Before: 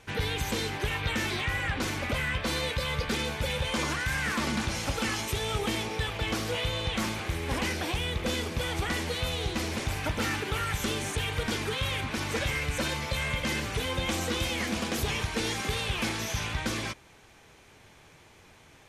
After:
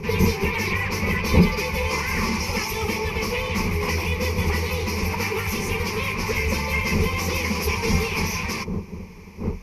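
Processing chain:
wind on the microphone 220 Hz −33 dBFS
time stretch by phase vocoder 0.51×
EQ curve with evenly spaced ripples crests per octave 0.83, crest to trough 15 dB
level +6 dB

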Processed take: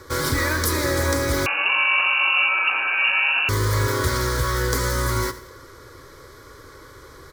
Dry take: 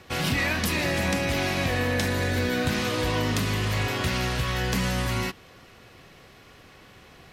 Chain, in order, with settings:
in parallel at −11 dB: wrap-around overflow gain 27 dB
on the sum: phaser with its sweep stopped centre 730 Hz, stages 6
repeating echo 87 ms, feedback 39%, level −15 dB
0:01.46–0:03.49: voice inversion scrambler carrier 2,800 Hz
notch filter 1,800 Hz, Q 14
level +8 dB

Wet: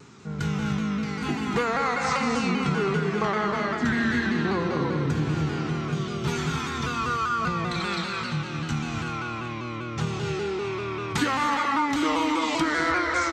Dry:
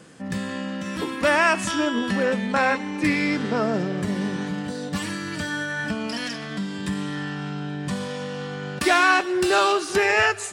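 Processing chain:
high-shelf EQ 9,700 Hz −5 dB
convolution reverb, pre-delay 3 ms, DRR 2 dB
change of speed 0.79×
mains-hum notches 60/120/180 Hz
repeating echo 374 ms, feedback 51%, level −13 dB
downward compressor 6 to 1, threshold −20 dBFS, peak gain reduction 8.5 dB
parametric band 580 Hz −10.5 dB 0.28 octaves
pitch modulation by a square or saw wave saw down 5.1 Hz, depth 100 cents

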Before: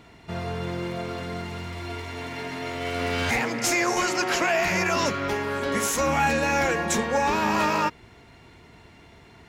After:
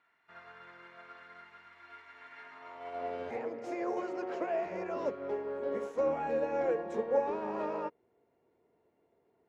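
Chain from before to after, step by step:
band-pass filter sweep 1,500 Hz → 480 Hz, 0:02.41–0:03.29
expander for the loud parts 1.5 to 1, over −50 dBFS

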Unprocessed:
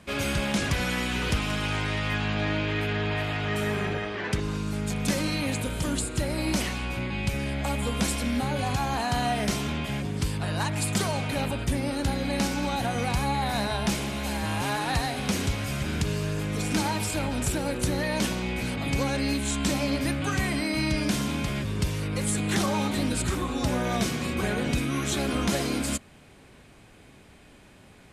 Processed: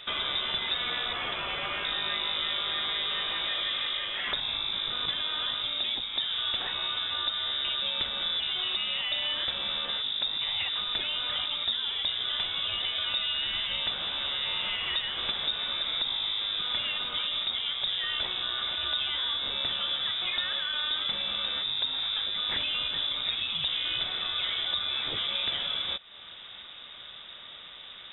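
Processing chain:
0:01.13–0:01.85: high-pass filter 260 Hz 12 dB per octave
0:04.27–0:05.06: high-shelf EQ 2,100 Hz +10 dB
downward compressor 2.5 to 1, threshold −40 dBFS, peak gain reduction 13.5 dB
voice inversion scrambler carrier 3,700 Hz
level +6.5 dB

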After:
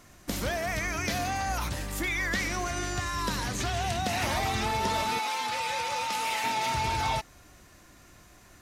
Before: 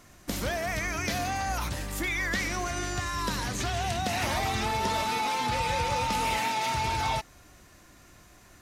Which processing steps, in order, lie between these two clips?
0:05.19–0:06.44: high-pass filter 810 Hz 6 dB per octave

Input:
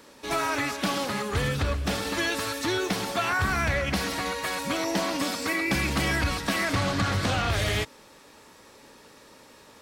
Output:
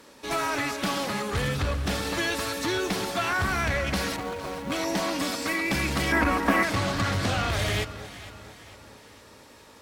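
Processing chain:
0:04.16–0:04.72: running median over 25 samples
asymmetric clip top −23.5 dBFS
0:06.12–0:06.63: octave-band graphic EQ 125/250/500/1,000/2,000/4,000/8,000 Hz −10/+10/+4/+8/+5/−10/−5 dB
on a send: delay that swaps between a low-pass and a high-pass 229 ms, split 870 Hz, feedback 68%, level −11.5 dB

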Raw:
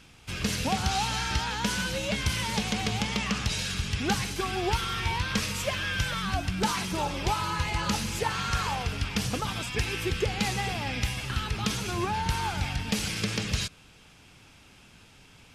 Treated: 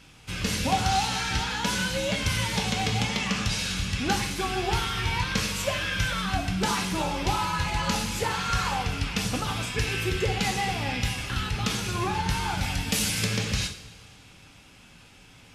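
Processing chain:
0:12.61–0:13.25: high-shelf EQ 7,900 Hz +11.5 dB
coupled-rooms reverb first 0.44 s, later 2.2 s, from −18 dB, DRR 1.5 dB

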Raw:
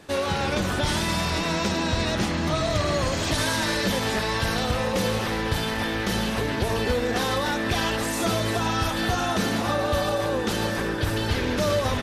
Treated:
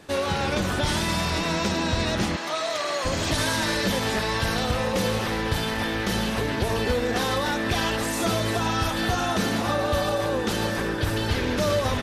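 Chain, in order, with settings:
0:02.36–0:03.05: high-pass filter 550 Hz 12 dB per octave

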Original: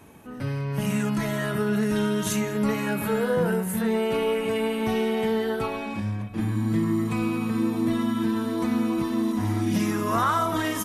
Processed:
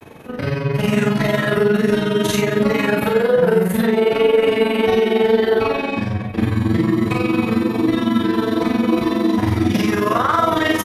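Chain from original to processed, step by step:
octave-band graphic EQ 500/2,000/4,000/8,000 Hz +7/+4/+5/−6 dB
brickwall limiter −15.5 dBFS, peak gain reduction 6.5 dB
granular cloud 57 ms, grains 22 per second, spray 12 ms, pitch spread up and down by 0 semitones
on a send: ambience of single reflections 34 ms −5.5 dB, 56 ms −7 dB
on the sum: level +8.5 dB

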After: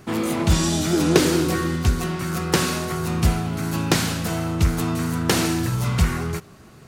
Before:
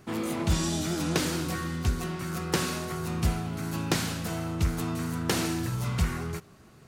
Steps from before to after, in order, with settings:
0:00.93–0:01.76: parametric band 390 Hz +9 dB 0.62 octaves
level +7.5 dB

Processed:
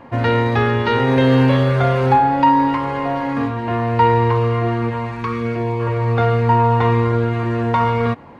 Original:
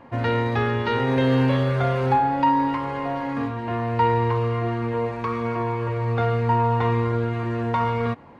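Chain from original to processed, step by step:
0:04.89–0:05.79: parametric band 350 Hz → 1,500 Hz −14 dB 0.76 octaves
level +6 dB

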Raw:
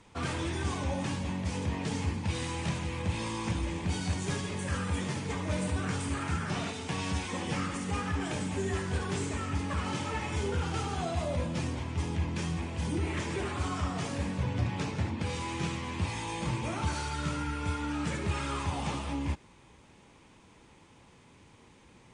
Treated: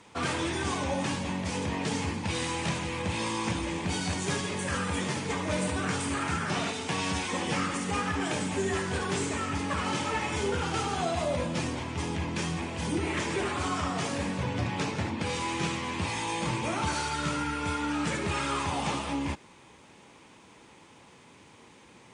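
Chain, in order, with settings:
high-pass filter 230 Hz 6 dB per octave
level +5.5 dB

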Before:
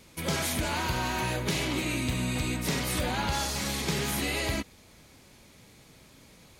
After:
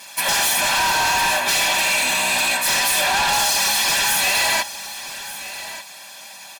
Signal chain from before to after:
lower of the sound and its delayed copy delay 5.1 ms
high-pass filter 750 Hz 12 dB per octave
comb filter 1.2 ms, depth 78%
in parallel at −1.5 dB: brickwall limiter −25.5 dBFS, peak gain reduction 6 dB
on the sum: sine wavefolder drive 9 dB, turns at −15 dBFS
on a send: single-tap delay 1,186 ms −14 dB

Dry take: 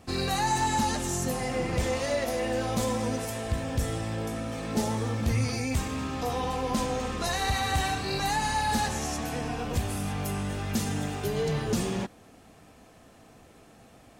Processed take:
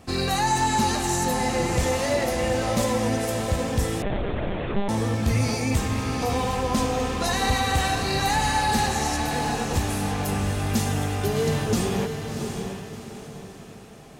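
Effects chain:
feedback delay with all-pass diffusion 692 ms, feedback 40%, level −6 dB
0:04.02–0:04.89: one-pitch LPC vocoder at 8 kHz 200 Hz
level +4 dB

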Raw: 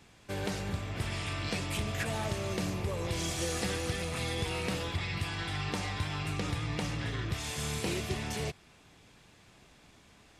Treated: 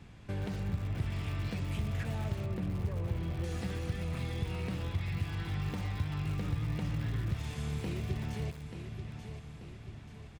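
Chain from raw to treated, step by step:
0:02.44–0:03.44: high-frequency loss of the air 350 metres
repeating echo 885 ms, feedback 41%, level −15 dB
downward compressor 2 to 1, threshold −46 dBFS, peak gain reduction 10 dB
bass and treble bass +11 dB, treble −8 dB
feedback echo at a low word length 120 ms, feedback 35%, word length 6 bits, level −14 dB

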